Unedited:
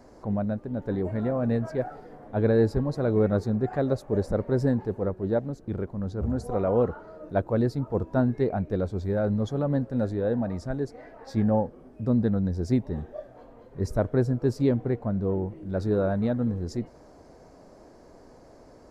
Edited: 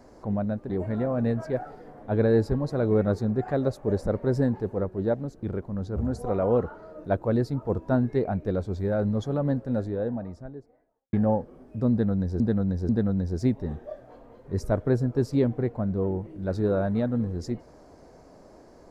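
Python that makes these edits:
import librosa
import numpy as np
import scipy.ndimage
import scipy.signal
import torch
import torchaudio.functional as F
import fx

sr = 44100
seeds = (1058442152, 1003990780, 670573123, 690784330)

y = fx.studio_fade_out(x, sr, start_s=9.71, length_s=1.67)
y = fx.edit(y, sr, fx.cut(start_s=0.7, length_s=0.25),
    fx.repeat(start_s=12.16, length_s=0.49, count=3), tone=tone)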